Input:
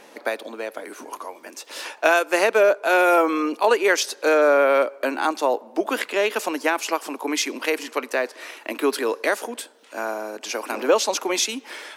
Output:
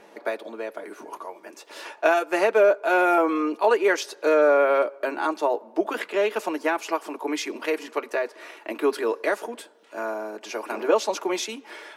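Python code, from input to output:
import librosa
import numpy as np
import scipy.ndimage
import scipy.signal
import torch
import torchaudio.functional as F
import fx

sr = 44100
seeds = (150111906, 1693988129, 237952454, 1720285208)

y = fx.high_shelf(x, sr, hz=2600.0, db=-9.5)
y = fx.notch_comb(y, sr, f0_hz=260.0)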